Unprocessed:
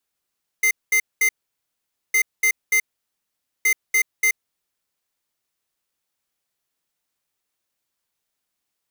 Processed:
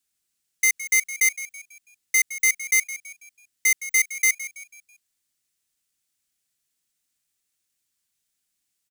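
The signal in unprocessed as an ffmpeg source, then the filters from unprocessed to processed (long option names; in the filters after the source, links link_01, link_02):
-f lavfi -i "aevalsrc='0.141*(2*lt(mod(2080*t,1),0.5)-1)*clip(min(mod(mod(t,1.51),0.29),0.08-mod(mod(t,1.51),0.29))/0.005,0,1)*lt(mod(t,1.51),0.87)':duration=4.53:sample_rate=44100"
-filter_complex "[0:a]equalizer=frequency=500:width_type=o:width=1:gain=-8,equalizer=frequency=1000:width_type=o:width=1:gain=-8,equalizer=frequency=8000:width_type=o:width=1:gain=6,asplit=5[link_01][link_02][link_03][link_04][link_05];[link_02]adelay=164,afreqshift=84,volume=-14.5dB[link_06];[link_03]adelay=328,afreqshift=168,volume=-22dB[link_07];[link_04]adelay=492,afreqshift=252,volume=-29.6dB[link_08];[link_05]adelay=656,afreqshift=336,volume=-37.1dB[link_09];[link_01][link_06][link_07][link_08][link_09]amix=inputs=5:normalize=0"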